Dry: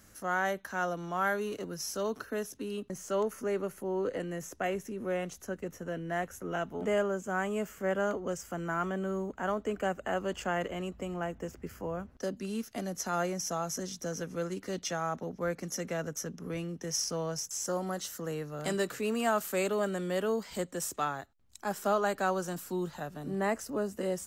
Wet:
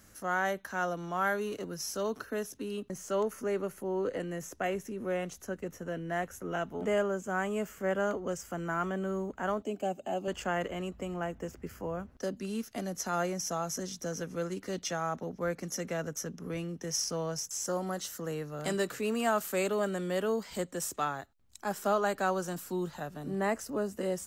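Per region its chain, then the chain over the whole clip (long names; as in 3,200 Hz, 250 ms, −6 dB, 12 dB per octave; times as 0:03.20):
0:09.62–0:10.28: high-pass filter 160 Hz + flat-topped bell 1,500 Hz −13.5 dB 1.1 octaves + notch comb filter 480 Hz
whole clip: no processing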